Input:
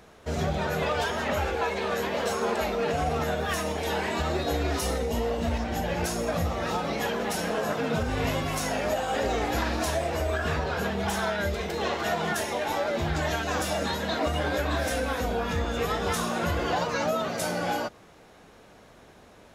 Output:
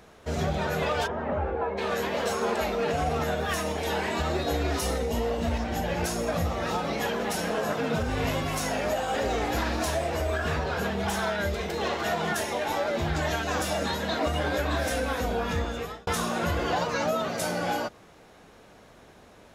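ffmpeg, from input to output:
ffmpeg -i in.wav -filter_complex "[0:a]asplit=3[link_01][link_02][link_03];[link_01]afade=type=out:start_time=1.06:duration=0.02[link_04];[link_02]lowpass=1100,afade=type=in:start_time=1.06:duration=0.02,afade=type=out:start_time=1.77:duration=0.02[link_05];[link_03]afade=type=in:start_time=1.77:duration=0.02[link_06];[link_04][link_05][link_06]amix=inputs=3:normalize=0,asettb=1/sr,asplit=3[link_07][link_08][link_09];[link_07]atrim=end=7.954[link_10];[link_08]atrim=start=7.95:end=12.14,asetpts=PTS-STARTPTS,afade=type=in:duration=0.004:curve=qsin,afade=type=out:start_time=4.186:duration=0.004:curve=qsin,asoftclip=type=hard:threshold=-21dB[link_11];[link_09]atrim=start=12.136[link_12];[link_10][link_11]acrossfade=duration=0.004:curve1=hsin:curve2=qsin[link_13];[link_13][link_12]acrossfade=duration=0.004:curve1=qsin:curve2=hsin,asplit=2[link_14][link_15];[link_14]atrim=end=16.07,asetpts=PTS-STARTPTS,afade=type=out:start_time=15.58:duration=0.49[link_16];[link_15]atrim=start=16.07,asetpts=PTS-STARTPTS,afade=type=in:duration=0.004:curve=hsin[link_17];[link_16][link_17]concat=n=2:v=0:a=1" out.wav

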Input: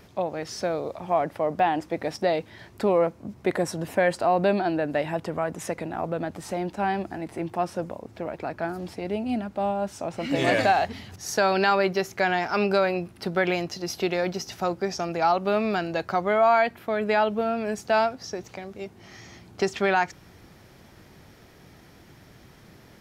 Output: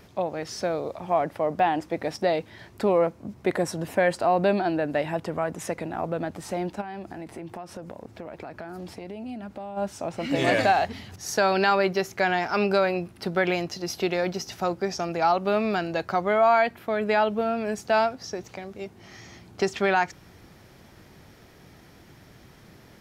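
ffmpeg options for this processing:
ffmpeg -i in.wav -filter_complex "[0:a]asplit=3[link_01][link_02][link_03];[link_01]afade=type=out:start_time=6.8:duration=0.02[link_04];[link_02]acompressor=threshold=-33dB:ratio=8:attack=3.2:release=140:knee=1:detection=peak,afade=type=in:start_time=6.8:duration=0.02,afade=type=out:start_time=9.76:duration=0.02[link_05];[link_03]afade=type=in:start_time=9.76:duration=0.02[link_06];[link_04][link_05][link_06]amix=inputs=3:normalize=0" out.wav

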